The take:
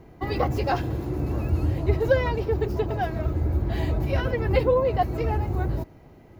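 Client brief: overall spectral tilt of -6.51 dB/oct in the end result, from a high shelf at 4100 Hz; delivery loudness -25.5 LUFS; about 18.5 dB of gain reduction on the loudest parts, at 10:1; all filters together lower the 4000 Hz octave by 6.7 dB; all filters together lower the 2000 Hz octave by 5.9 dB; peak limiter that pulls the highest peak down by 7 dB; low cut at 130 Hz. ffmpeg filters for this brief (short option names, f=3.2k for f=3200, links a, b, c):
-af "highpass=130,equalizer=f=2k:t=o:g=-6.5,equalizer=f=4k:t=o:g=-9,highshelf=f=4.1k:g=4,acompressor=threshold=-36dB:ratio=10,volume=16.5dB,alimiter=limit=-16dB:level=0:latency=1"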